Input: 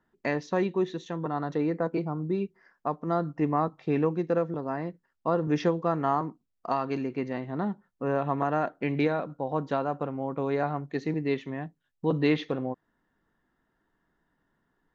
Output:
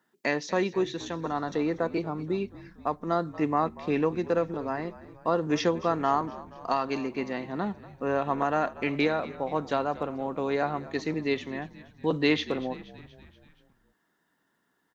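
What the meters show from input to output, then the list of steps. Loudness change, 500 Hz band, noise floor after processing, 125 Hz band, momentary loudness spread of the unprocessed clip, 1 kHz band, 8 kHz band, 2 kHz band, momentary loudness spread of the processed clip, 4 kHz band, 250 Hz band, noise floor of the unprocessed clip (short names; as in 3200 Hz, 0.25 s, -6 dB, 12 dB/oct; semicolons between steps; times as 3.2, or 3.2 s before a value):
+0.5 dB, +0.5 dB, -74 dBFS, -4.0 dB, 8 LU, +1.5 dB, n/a, +4.0 dB, 8 LU, +7.0 dB, -0.5 dB, -78 dBFS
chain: HPF 180 Hz; high shelf 2700 Hz +11 dB; on a send: frequency-shifting echo 0.238 s, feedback 58%, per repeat -58 Hz, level -17.5 dB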